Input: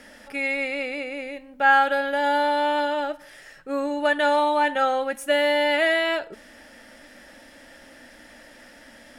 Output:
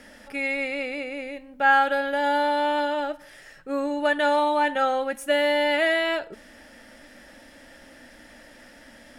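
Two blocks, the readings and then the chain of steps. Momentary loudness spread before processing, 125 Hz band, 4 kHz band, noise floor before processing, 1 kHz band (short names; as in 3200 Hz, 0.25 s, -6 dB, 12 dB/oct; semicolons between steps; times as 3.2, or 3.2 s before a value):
13 LU, n/a, -1.5 dB, -49 dBFS, -1.0 dB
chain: low shelf 240 Hz +4 dB; gain -1.5 dB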